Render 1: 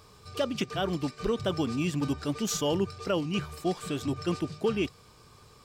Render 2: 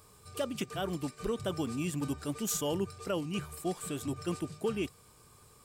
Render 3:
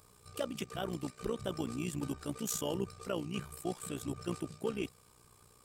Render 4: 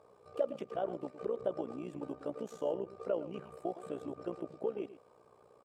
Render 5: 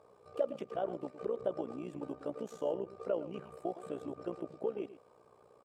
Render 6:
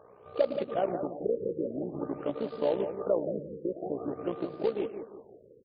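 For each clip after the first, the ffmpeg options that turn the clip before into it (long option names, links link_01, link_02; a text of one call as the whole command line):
ffmpeg -i in.wav -af "highshelf=frequency=6900:width_type=q:width=1.5:gain=9,volume=-5dB" out.wav
ffmpeg -i in.wav -af "tremolo=f=61:d=0.75" out.wav
ffmpeg -i in.wav -af "acompressor=threshold=-38dB:ratio=4,bandpass=frequency=570:width_type=q:width=2.4:csg=0,aecho=1:1:113:0.2,volume=11.5dB" out.wav
ffmpeg -i in.wav -af anull out.wav
ffmpeg -i in.wav -filter_complex "[0:a]acrusher=bits=4:mode=log:mix=0:aa=0.000001,asplit=2[link_01][link_02];[link_02]adelay=174,lowpass=frequency=3800:poles=1,volume=-8.5dB,asplit=2[link_03][link_04];[link_04]adelay=174,lowpass=frequency=3800:poles=1,volume=0.42,asplit=2[link_05][link_06];[link_06]adelay=174,lowpass=frequency=3800:poles=1,volume=0.42,asplit=2[link_07][link_08];[link_08]adelay=174,lowpass=frequency=3800:poles=1,volume=0.42,asplit=2[link_09][link_10];[link_10]adelay=174,lowpass=frequency=3800:poles=1,volume=0.42[link_11];[link_01][link_03][link_05][link_07][link_09][link_11]amix=inputs=6:normalize=0,afftfilt=real='re*lt(b*sr/1024,540*pow(5000/540,0.5+0.5*sin(2*PI*0.49*pts/sr)))':imag='im*lt(b*sr/1024,540*pow(5000/540,0.5+0.5*sin(2*PI*0.49*pts/sr)))':win_size=1024:overlap=0.75,volume=6.5dB" out.wav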